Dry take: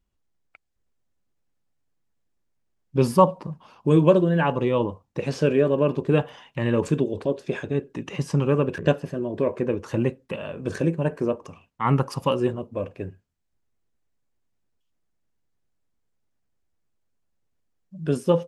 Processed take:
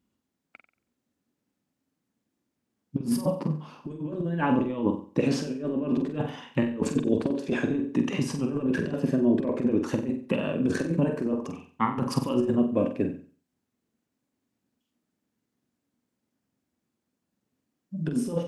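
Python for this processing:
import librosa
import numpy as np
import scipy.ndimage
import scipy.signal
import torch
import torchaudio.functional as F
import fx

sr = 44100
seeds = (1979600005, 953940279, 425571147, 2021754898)

y = scipy.signal.sosfilt(scipy.signal.butter(2, 110.0, 'highpass', fs=sr, output='sos'), x)
y = fx.peak_eq(y, sr, hz=250.0, db=12.5, octaves=0.75)
y = fx.over_compress(y, sr, threshold_db=-21.0, ratio=-0.5)
y = fx.room_flutter(y, sr, wall_m=7.9, rt60_s=0.41)
y = y * 10.0 ** (-4.0 / 20.0)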